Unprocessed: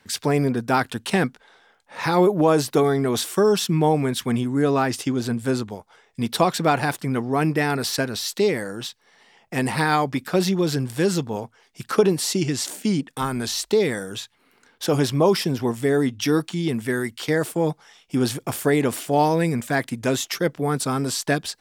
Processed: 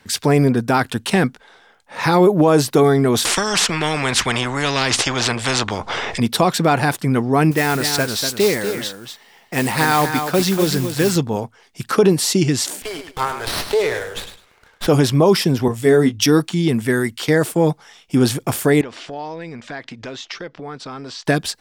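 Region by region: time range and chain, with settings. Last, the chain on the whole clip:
3.25–6.2 air absorption 110 m + upward compressor, threshold -33 dBFS + spectral compressor 4:1
7.51–11.16 low shelf 410 Hz -5 dB + modulation noise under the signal 13 dB + echo 0.242 s -8 dB
12.82–14.87 HPF 460 Hz 24 dB/oct + feedback echo 0.102 s, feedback 22%, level -9 dB + running maximum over 5 samples
15.68–16.26 doubler 19 ms -7 dB + three-band expander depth 70%
18.81–21.26 compressor 4:1, threshold -31 dBFS + LPF 5200 Hz 24 dB/oct + bell 120 Hz -9.5 dB 2.9 oct
whole clip: low shelf 150 Hz +3.5 dB; maximiser +8.5 dB; gain -3 dB

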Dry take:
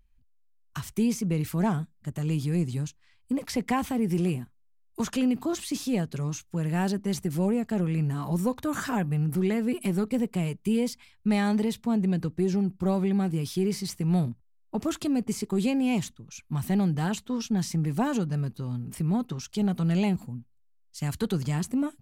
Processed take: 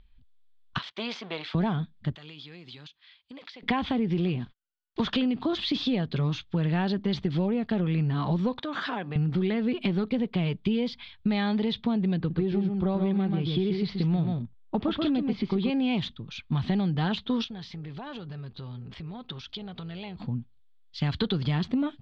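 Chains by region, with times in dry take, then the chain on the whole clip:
0.78–1.55 half-wave gain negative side -7 dB + HPF 610 Hz + upward compressor, threshold -53 dBFS
2.15–3.63 HPF 1400 Hz 6 dB/oct + high shelf 8800 Hz +9 dB + compressor 16:1, threshold -47 dBFS
4.4–5.12 CVSD 64 kbps + gate -58 dBFS, range -36 dB
8.59–9.16 HPF 310 Hz + compressor 3:1, threshold -37 dBFS
12.17–15.7 air absorption 180 m + echo 0.132 s -5.5 dB
17.44–20.2 bell 220 Hz -7.5 dB 1.7 oct + compressor, threshold -42 dBFS + AM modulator 270 Hz, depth 15%
whole clip: elliptic low-pass 4400 Hz, stop band 80 dB; bell 3400 Hz +11.5 dB 0.28 oct; compressor, threshold -31 dBFS; gain +7.5 dB

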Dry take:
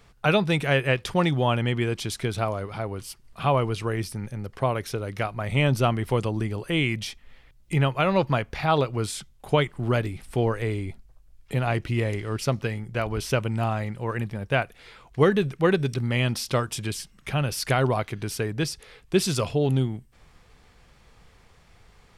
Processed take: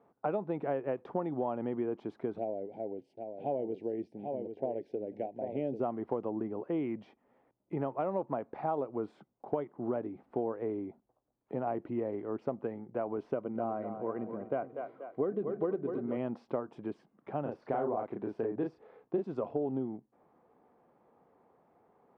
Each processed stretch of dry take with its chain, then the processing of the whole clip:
2.38–5.8 Butterworth band-stop 1200 Hz, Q 0.75 + low shelf 170 Hz -7 dB + echo 0.791 s -7.5 dB
13.34–16.17 notch comb 860 Hz + split-band echo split 310 Hz, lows 0.103 s, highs 0.241 s, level -10.5 dB
17.42–19.24 de-esser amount 65% + doubler 35 ms -3 dB + Doppler distortion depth 0.12 ms
whole clip: Chebyshev band-pass 260–840 Hz, order 2; compressor 6:1, threshold -27 dBFS; gain -2 dB

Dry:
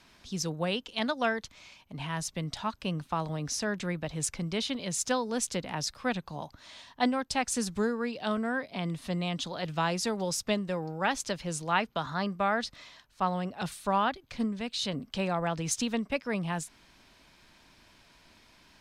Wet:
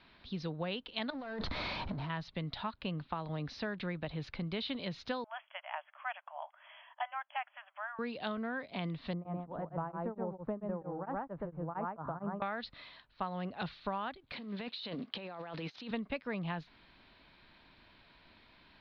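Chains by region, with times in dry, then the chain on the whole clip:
1.1–2.1 power-law curve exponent 0.5 + bell 2800 Hz -11.5 dB 1.2 oct + negative-ratio compressor -35 dBFS
5.24–7.99 de-esser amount 90% + brick-wall FIR band-pass 570–3400 Hz + air absorption 140 m
9.13–12.42 LPF 1200 Hz 24 dB/oct + echo 0.123 s -3 dB + beating tremolo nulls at 4.4 Hz
14.32–15.91 block floating point 5-bit + HPF 240 Hz + negative-ratio compressor -40 dBFS
whole clip: elliptic low-pass 4200 Hz, stop band 50 dB; compressor 6:1, threshold -32 dBFS; gain -1.5 dB

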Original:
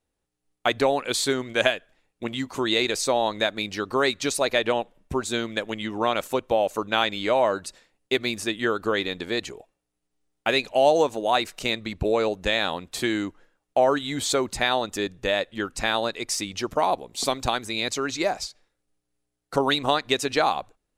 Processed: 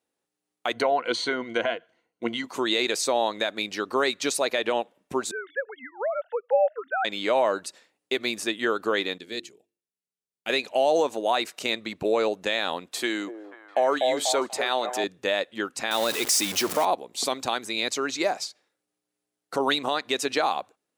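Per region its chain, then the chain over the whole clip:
0.73–2.44 treble ducked by the level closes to 2400 Hz, closed at -20 dBFS + ripple EQ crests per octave 1.9, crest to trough 11 dB + mismatched tape noise reduction decoder only
5.31–7.05 sine-wave speech + fixed phaser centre 1600 Hz, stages 8
9.18–10.5 bell 950 Hz -14 dB 1.9 oct + notches 50/100/150/200/250/300/350/400/450 Hz + upward expander, over -47 dBFS
12.95–15.04 HPF 310 Hz 6 dB/oct + delay with a stepping band-pass 0.244 s, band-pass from 560 Hz, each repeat 0.7 oct, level -3 dB
15.91–16.85 zero-crossing step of -27.5 dBFS + high shelf 5400 Hz +8.5 dB
whole clip: HPF 240 Hz 12 dB/oct; limiter -12.5 dBFS

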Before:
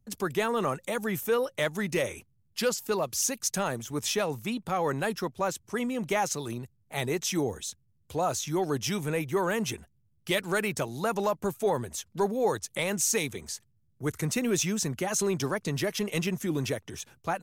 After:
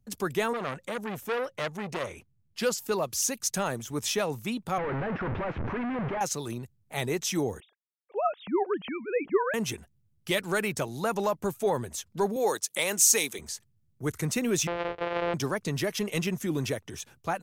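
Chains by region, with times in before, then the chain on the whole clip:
0.53–2.62 high shelf 6200 Hz -10 dB + core saturation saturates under 1900 Hz
4.78–6.21 infinite clipping + LPF 2100 Hz 24 dB/oct
7.6–9.54 sine-wave speech + low-pass opened by the level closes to 1700 Hz, open at -22.5 dBFS
12.36–13.39 HPF 270 Hz + high shelf 3500 Hz +8 dB
14.67–15.34 sample sorter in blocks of 256 samples + LPF 3100 Hz 24 dB/oct + resonant low shelf 330 Hz -10.5 dB, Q 3
whole clip: dry

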